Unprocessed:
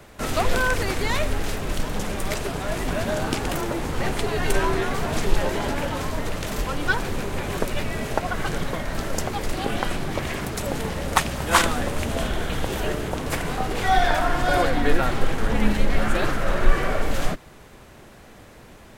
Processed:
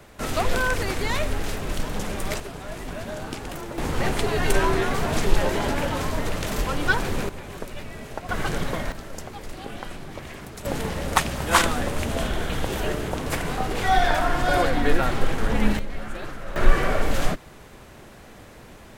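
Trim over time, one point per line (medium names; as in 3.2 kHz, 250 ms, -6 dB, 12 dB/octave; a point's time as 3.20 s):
-1.5 dB
from 2.40 s -8 dB
from 3.78 s +1 dB
from 7.29 s -9.5 dB
from 8.29 s 0 dB
from 8.92 s -10 dB
from 10.65 s -0.5 dB
from 15.79 s -11.5 dB
from 16.56 s +1 dB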